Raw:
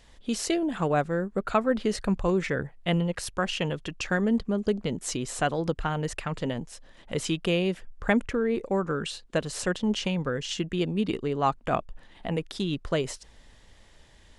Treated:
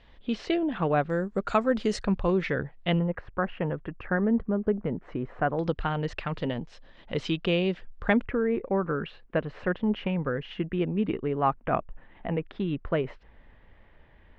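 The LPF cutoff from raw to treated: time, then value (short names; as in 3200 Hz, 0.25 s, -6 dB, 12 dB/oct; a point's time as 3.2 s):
LPF 24 dB/oct
3600 Hz
from 1.1 s 7600 Hz
from 2.04 s 4300 Hz
from 2.99 s 1800 Hz
from 5.59 s 4300 Hz
from 8.23 s 2400 Hz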